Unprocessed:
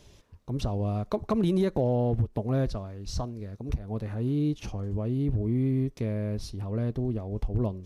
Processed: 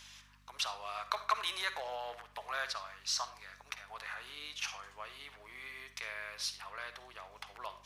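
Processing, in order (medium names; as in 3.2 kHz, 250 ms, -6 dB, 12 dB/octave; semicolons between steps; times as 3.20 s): high-pass 1.2 kHz 24 dB/octave; treble shelf 4.9 kHz -7 dB; hum 50 Hz, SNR 22 dB; reverberation RT60 0.45 s, pre-delay 45 ms, DRR 10.5 dB; trim +10.5 dB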